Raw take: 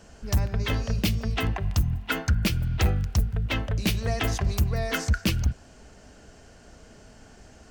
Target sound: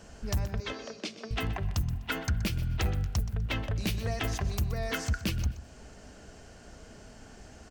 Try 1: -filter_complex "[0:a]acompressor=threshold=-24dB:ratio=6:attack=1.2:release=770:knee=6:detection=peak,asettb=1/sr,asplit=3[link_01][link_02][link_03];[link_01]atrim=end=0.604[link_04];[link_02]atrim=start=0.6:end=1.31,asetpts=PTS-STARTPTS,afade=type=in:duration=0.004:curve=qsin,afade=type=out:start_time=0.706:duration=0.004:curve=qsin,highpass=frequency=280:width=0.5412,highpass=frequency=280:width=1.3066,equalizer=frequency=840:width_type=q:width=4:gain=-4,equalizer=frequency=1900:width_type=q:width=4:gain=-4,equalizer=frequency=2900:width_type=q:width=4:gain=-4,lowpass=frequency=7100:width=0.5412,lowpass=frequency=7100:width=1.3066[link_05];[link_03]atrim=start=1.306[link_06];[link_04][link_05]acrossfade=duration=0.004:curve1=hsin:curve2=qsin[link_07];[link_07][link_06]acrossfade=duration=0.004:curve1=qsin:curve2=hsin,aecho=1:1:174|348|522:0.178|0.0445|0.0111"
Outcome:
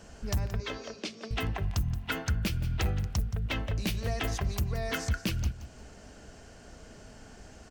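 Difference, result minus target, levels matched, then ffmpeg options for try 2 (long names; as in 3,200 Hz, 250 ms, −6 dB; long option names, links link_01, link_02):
echo 49 ms late
-filter_complex "[0:a]acompressor=threshold=-24dB:ratio=6:attack=1.2:release=770:knee=6:detection=peak,asettb=1/sr,asplit=3[link_01][link_02][link_03];[link_01]atrim=end=0.604[link_04];[link_02]atrim=start=0.6:end=1.31,asetpts=PTS-STARTPTS,afade=type=in:duration=0.004:curve=qsin,afade=type=out:start_time=0.706:duration=0.004:curve=qsin,highpass=frequency=280:width=0.5412,highpass=frequency=280:width=1.3066,equalizer=frequency=840:width_type=q:width=4:gain=-4,equalizer=frequency=1900:width_type=q:width=4:gain=-4,equalizer=frequency=2900:width_type=q:width=4:gain=-4,lowpass=frequency=7100:width=0.5412,lowpass=frequency=7100:width=1.3066[link_05];[link_03]atrim=start=1.306[link_06];[link_04][link_05]acrossfade=duration=0.004:curve1=hsin:curve2=qsin[link_07];[link_07][link_06]acrossfade=duration=0.004:curve1=qsin:curve2=hsin,aecho=1:1:125|250|375:0.178|0.0445|0.0111"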